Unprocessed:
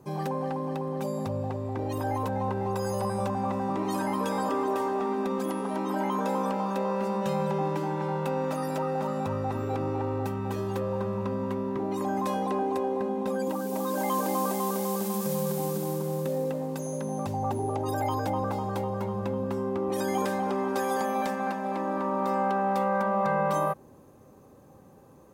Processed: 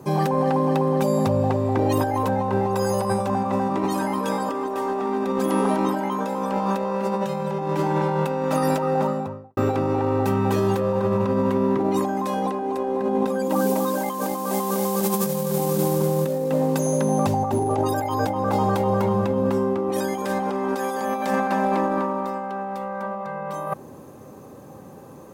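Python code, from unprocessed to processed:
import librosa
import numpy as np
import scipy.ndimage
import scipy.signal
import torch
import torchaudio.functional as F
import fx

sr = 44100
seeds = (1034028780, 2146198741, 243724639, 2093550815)

y = fx.studio_fade_out(x, sr, start_s=8.75, length_s=0.82)
y = scipy.signal.sosfilt(scipy.signal.butter(2, 95.0, 'highpass', fs=sr, output='sos'), y)
y = fx.over_compress(y, sr, threshold_db=-31.0, ratio=-0.5)
y = y * librosa.db_to_amplitude(9.0)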